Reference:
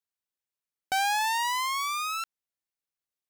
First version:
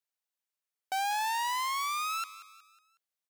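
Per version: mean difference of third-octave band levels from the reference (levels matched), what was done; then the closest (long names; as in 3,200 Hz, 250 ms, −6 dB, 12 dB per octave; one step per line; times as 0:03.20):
4.0 dB: repeating echo 183 ms, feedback 44%, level −17.5 dB
soft clipping −27.5 dBFS, distortion −14 dB
high-pass filter 440 Hz 12 dB per octave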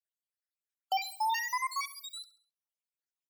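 8.0 dB: time-frequency cells dropped at random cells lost 81%
high-pass filter 550 Hz 24 dB per octave
repeating echo 67 ms, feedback 44%, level −17 dB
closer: first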